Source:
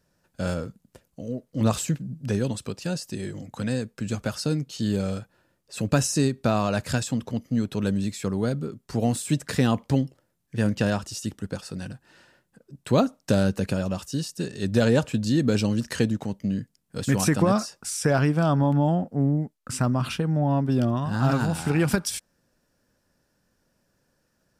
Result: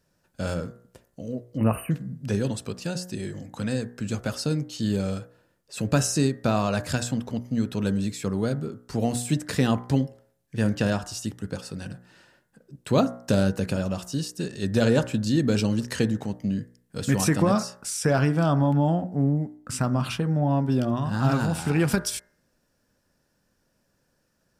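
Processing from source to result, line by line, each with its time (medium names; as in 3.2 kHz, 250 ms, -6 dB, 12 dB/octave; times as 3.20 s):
1.57–1.91 s: spectral selection erased 3–8.6 kHz
whole clip: de-hum 60.34 Hz, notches 35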